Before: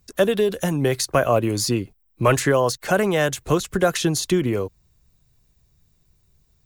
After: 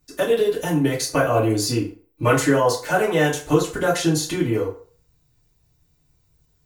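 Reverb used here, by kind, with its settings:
feedback delay network reverb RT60 0.44 s, low-frequency decay 0.75×, high-frequency decay 0.7×, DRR −6 dB
level −6.5 dB

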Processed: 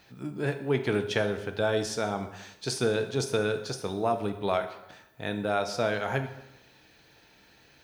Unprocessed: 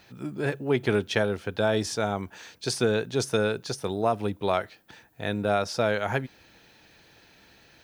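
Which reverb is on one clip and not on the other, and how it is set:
dense smooth reverb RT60 0.92 s, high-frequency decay 0.8×, DRR 7 dB
level −3 dB

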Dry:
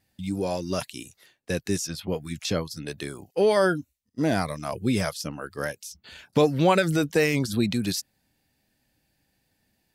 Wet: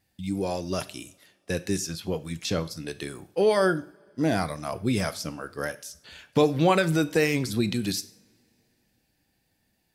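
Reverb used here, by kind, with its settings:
coupled-rooms reverb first 0.47 s, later 3.1 s, from −27 dB, DRR 12 dB
level −1 dB

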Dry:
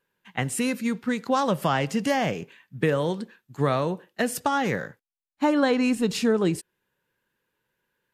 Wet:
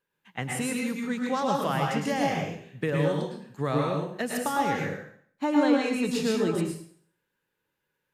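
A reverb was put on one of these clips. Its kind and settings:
dense smooth reverb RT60 0.57 s, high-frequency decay 0.95×, pre-delay 95 ms, DRR −1 dB
level −6 dB

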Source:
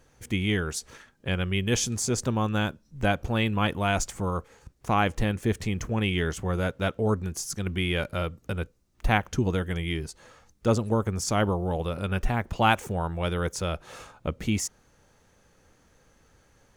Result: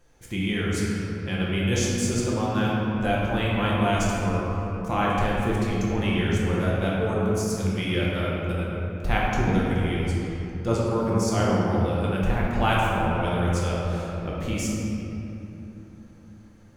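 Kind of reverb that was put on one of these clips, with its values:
rectangular room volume 170 cubic metres, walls hard, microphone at 0.83 metres
level −4.5 dB

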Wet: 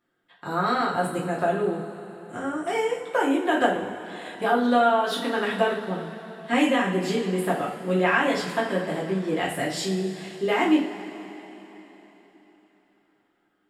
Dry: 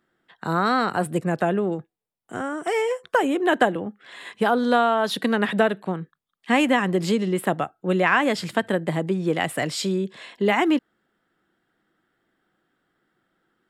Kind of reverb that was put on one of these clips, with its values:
coupled-rooms reverb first 0.38 s, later 4 s, from −18 dB, DRR −5.5 dB
level −8.5 dB

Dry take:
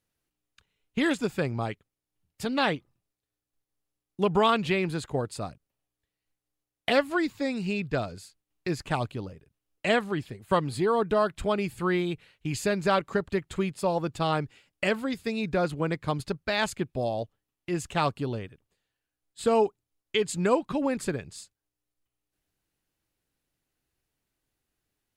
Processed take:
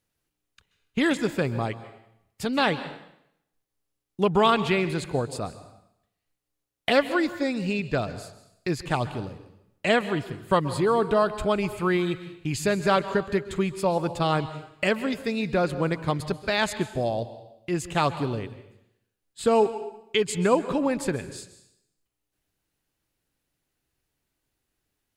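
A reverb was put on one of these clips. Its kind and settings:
dense smooth reverb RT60 0.78 s, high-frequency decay 0.95×, pre-delay 120 ms, DRR 13 dB
level +2.5 dB

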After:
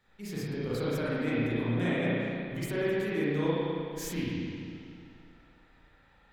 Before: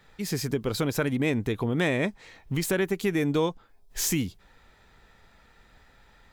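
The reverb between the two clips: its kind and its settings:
spring reverb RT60 2.4 s, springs 34/52 ms, chirp 25 ms, DRR −9.5 dB
level −13.5 dB

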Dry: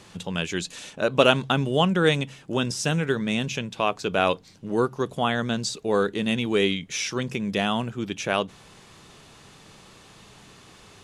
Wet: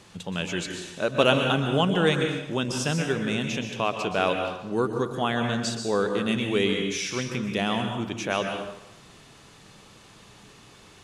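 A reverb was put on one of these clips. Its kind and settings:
dense smooth reverb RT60 0.91 s, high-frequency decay 0.8×, pre-delay 110 ms, DRR 4 dB
level −2.5 dB

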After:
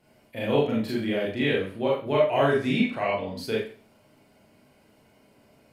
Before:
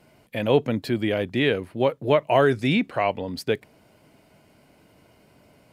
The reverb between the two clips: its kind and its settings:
four-comb reverb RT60 0.4 s, combs from 28 ms, DRR −5.5 dB
level −9 dB

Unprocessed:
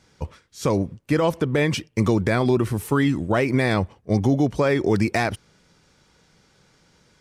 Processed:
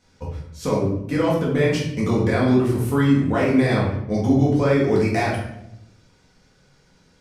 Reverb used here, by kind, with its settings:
rectangular room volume 200 cubic metres, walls mixed, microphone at 1.9 metres
level −6.5 dB

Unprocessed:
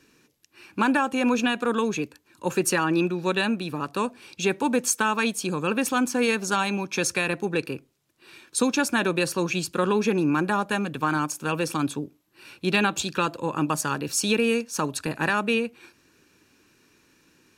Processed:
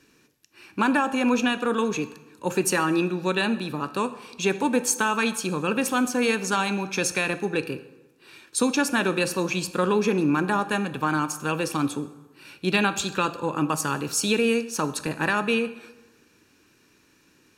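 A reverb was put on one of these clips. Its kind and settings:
dense smooth reverb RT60 1.1 s, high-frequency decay 0.7×, DRR 11.5 dB

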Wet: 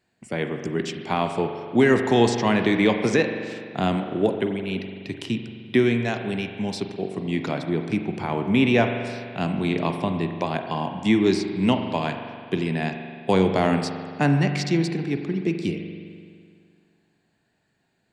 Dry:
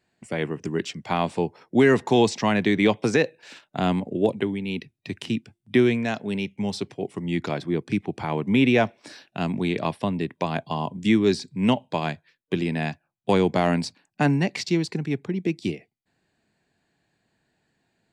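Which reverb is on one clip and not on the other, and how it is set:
spring reverb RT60 2.1 s, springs 42 ms, chirp 35 ms, DRR 5.5 dB

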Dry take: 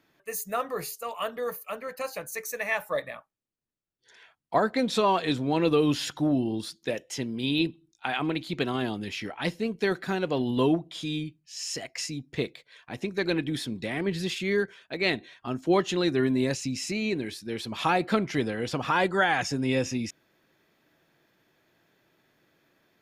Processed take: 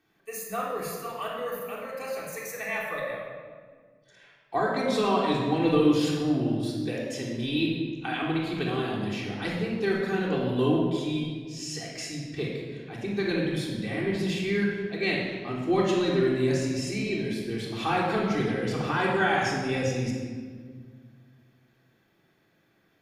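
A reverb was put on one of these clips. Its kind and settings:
rectangular room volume 2,200 cubic metres, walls mixed, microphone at 3.6 metres
level −6.5 dB

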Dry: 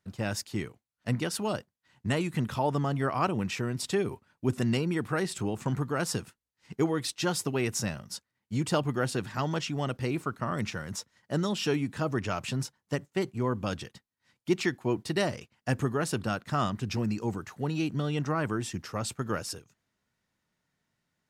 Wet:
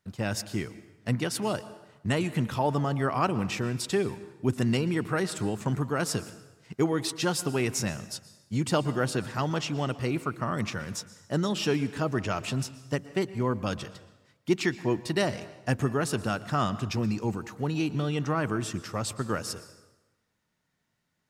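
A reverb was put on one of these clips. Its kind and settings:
dense smooth reverb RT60 1.1 s, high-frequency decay 0.8×, pre-delay 105 ms, DRR 15 dB
level +1.5 dB

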